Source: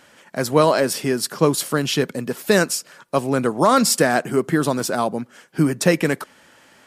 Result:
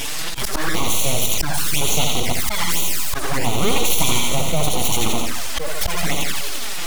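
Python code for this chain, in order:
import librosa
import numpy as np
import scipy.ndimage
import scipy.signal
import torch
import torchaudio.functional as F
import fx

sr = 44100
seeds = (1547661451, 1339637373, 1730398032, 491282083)

p1 = fx.spec_dropout(x, sr, seeds[0], share_pct=25)
p2 = (np.mod(10.0 ** (19.5 / 20.0) * p1 + 1.0, 2.0) - 1.0) / 10.0 ** (19.5 / 20.0)
p3 = p1 + (p2 * librosa.db_to_amplitude(-7.5))
p4 = scipy.signal.sosfilt(scipy.signal.butter(2, 120.0, 'highpass', fs=sr, output='sos'), p3)
p5 = fx.low_shelf(p4, sr, hz=200.0, db=-3.0)
p6 = fx.notch(p5, sr, hz=390.0, q=12.0)
p7 = p6 + fx.echo_thinned(p6, sr, ms=86, feedback_pct=61, hz=760.0, wet_db=-5.0, dry=0)
p8 = np.abs(p7)
p9 = fx.high_shelf(p8, sr, hz=2400.0, db=5.5)
p10 = fx.echo_feedback(p9, sr, ms=74, feedback_pct=42, wet_db=-7.5)
p11 = fx.auto_swell(p10, sr, attack_ms=411.0)
p12 = fx.env_flanger(p11, sr, rest_ms=7.6, full_db=-18.0)
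y = fx.env_flatten(p12, sr, amount_pct=70)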